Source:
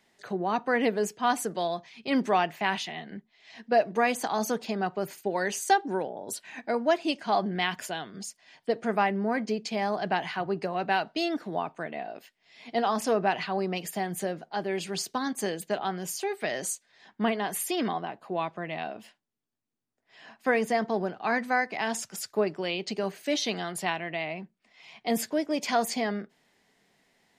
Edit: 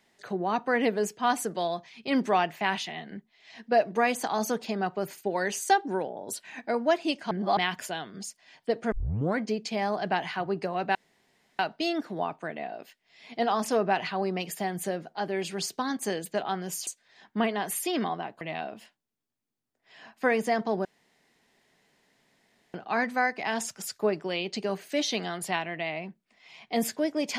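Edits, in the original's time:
7.31–7.57 reverse
8.92 tape start 0.46 s
10.95 insert room tone 0.64 s
16.23–16.71 cut
18.25–18.64 cut
21.08 insert room tone 1.89 s

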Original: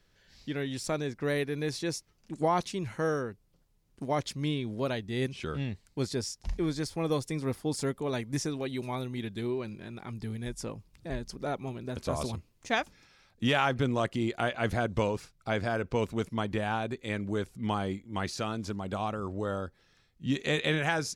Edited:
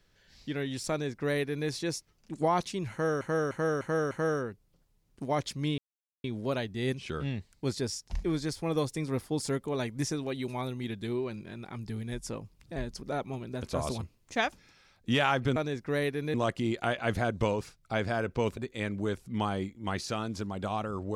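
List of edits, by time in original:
0.9–1.68 copy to 13.9
2.91–3.21 loop, 5 plays
4.58 insert silence 0.46 s
16.13–16.86 cut

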